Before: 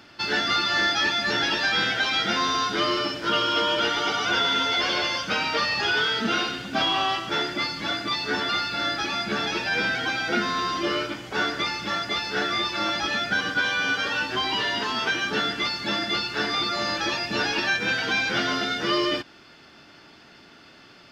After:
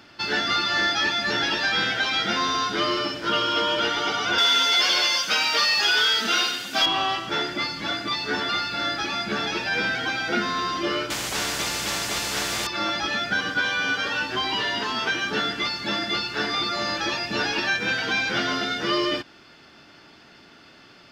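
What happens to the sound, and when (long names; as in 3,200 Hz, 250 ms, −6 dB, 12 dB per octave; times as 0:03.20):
0:04.38–0:06.86: RIAA equalisation recording
0:11.10–0:12.67: every bin compressed towards the loudest bin 4 to 1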